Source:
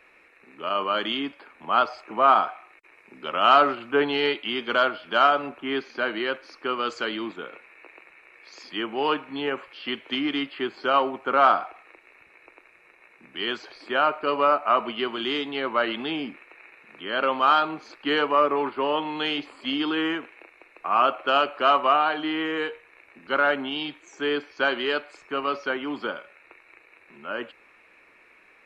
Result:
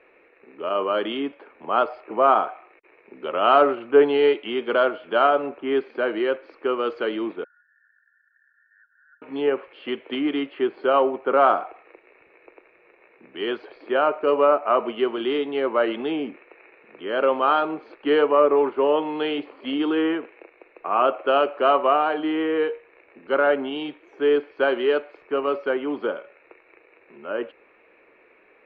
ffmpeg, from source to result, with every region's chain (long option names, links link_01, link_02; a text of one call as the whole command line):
ffmpeg -i in.wav -filter_complex "[0:a]asettb=1/sr,asplit=3[link_01][link_02][link_03];[link_01]atrim=end=7.444[link_04];[link_02]atrim=start=7.44:end=9.22,asetpts=PTS-STARTPTS,afade=type=in:duration=0.004:curve=qsin,afade=type=out:start_time=1.776:duration=0.004:curve=qsin,asuperpass=centerf=1600:order=20:qfactor=3.8,acompressor=threshold=-52dB:ratio=6:attack=3.2:release=140:knee=1:detection=peak[link_05];[link_03]atrim=start=9.216[link_06];[link_04][link_05]acrossfade=duration=0.004:curve1=hsin:curve2=qsin[link_07];[link_07][link_06]acrossfade=duration=0.004:curve1=qsin:curve2=hsin,lowpass=frequency=3400:width=0.5412,lowpass=frequency=3400:width=1.3066,equalizer=frequency=450:width=0.94:gain=12.5,volume=-4dB" out.wav